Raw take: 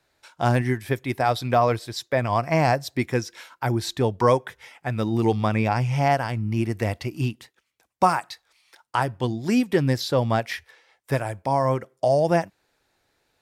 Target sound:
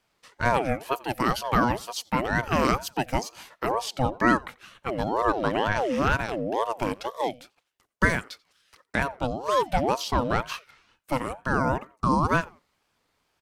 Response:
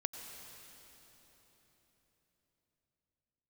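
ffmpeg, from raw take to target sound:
-filter_complex "[0:a]asettb=1/sr,asplit=3[link_01][link_02][link_03];[link_01]atrim=end=0.924[link_04];[link_02]atrim=start=0.92:end=3.5,asetpts=PTS-STARTPTS,afade=type=in:duration=0.004:curve=qsin,afade=type=out:start_time=2.576:duration=0.004:curve=qsin,highshelf=frequency=8500:gain=9[link_05];[link_03]atrim=start=3.496[link_06];[link_04][link_05]acrossfade=duration=0.004:curve1=hsin:curve2=qsin[link_07];[link_07][link_06]acrossfade=duration=0.004:curve1=qsin:curve2=hsin,asplit=2[link_08][link_09];[link_09]adelay=88,lowpass=frequency=4600:poles=1,volume=-23.5dB,asplit=2[link_10][link_11];[link_11]adelay=88,lowpass=frequency=4600:poles=1,volume=0.33[link_12];[link_08][link_10][link_12]amix=inputs=3:normalize=0,aeval=exprs='val(0)*sin(2*PI*600*n/s+600*0.4/2.1*sin(2*PI*2.1*n/s))':channel_layout=same"

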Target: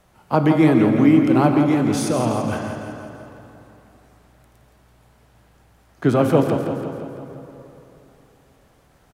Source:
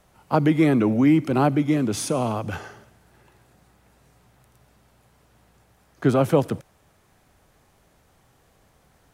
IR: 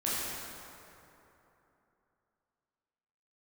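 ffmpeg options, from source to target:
-filter_complex "[0:a]aecho=1:1:168|336|504|672|840|1008|1176:0.376|0.218|0.126|0.0733|0.0425|0.0247|0.0143,asplit=2[link_01][link_02];[1:a]atrim=start_sample=2205,lowpass=5500[link_03];[link_02][link_03]afir=irnorm=-1:irlink=0,volume=-12dB[link_04];[link_01][link_04]amix=inputs=2:normalize=0"

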